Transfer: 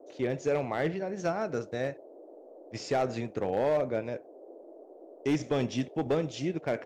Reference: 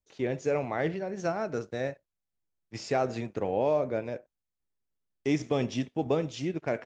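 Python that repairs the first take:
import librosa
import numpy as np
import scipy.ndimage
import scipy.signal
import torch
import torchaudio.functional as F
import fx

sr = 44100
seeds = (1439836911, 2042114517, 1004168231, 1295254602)

y = fx.fix_declip(x, sr, threshold_db=-21.0)
y = fx.noise_reduce(y, sr, print_start_s=4.73, print_end_s=5.23, reduce_db=30.0)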